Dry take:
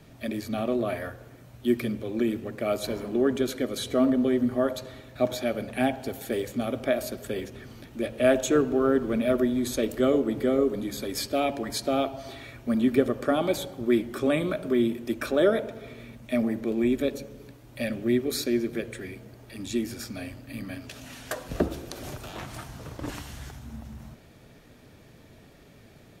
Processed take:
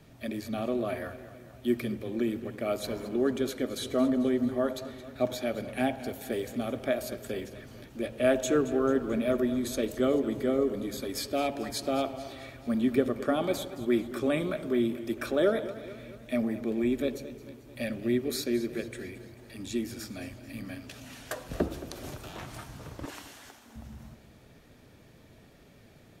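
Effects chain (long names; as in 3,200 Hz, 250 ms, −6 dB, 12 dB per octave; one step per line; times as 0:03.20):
0:23.05–0:23.76: Bessel high-pass filter 380 Hz, order 8
feedback echo with a swinging delay time 220 ms, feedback 57%, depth 64 cents, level −15.5 dB
level −3.5 dB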